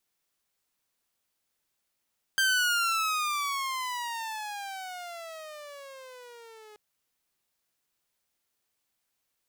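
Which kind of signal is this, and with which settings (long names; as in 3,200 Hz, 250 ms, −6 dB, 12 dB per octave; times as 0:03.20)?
pitch glide with a swell saw, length 4.38 s, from 1,580 Hz, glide −23 semitones, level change −27 dB, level −19 dB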